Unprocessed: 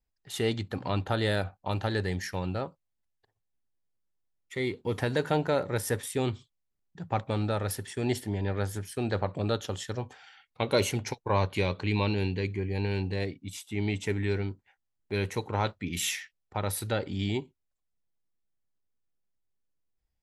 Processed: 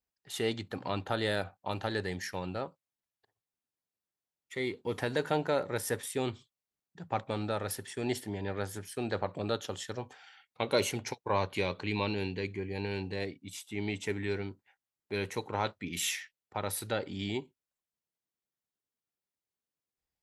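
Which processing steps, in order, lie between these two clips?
HPF 210 Hz 6 dB/oct; gain -2 dB

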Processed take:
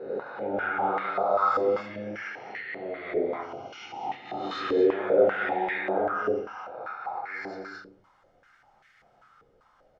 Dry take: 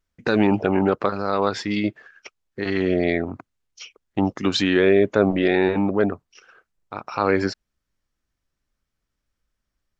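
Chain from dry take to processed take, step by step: spectral swells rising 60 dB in 1.10 s; comb 1.4 ms, depth 34%; reverse; upward compressor, threshold -21 dBFS; reverse; auto swell 0.307 s; in parallel at -10 dB: soft clip -18 dBFS, distortion -8 dB; on the sum: loudspeakers at several distances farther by 43 m -9 dB, 73 m -4 dB, 86 m -6 dB; reverb RT60 0.40 s, pre-delay 8 ms, DRR -3 dB; stepped band-pass 5.1 Hz 450–1900 Hz; gain -8 dB

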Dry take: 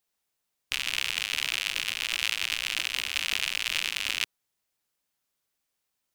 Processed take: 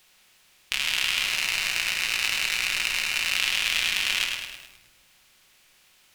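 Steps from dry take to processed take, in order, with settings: per-bin compression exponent 0.6; 1.23–3.36 notch 3300 Hz, Q 5.9; reverb RT60 1.4 s, pre-delay 5 ms, DRR 4.5 dB; lo-fi delay 0.105 s, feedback 55%, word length 8-bit, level -5 dB

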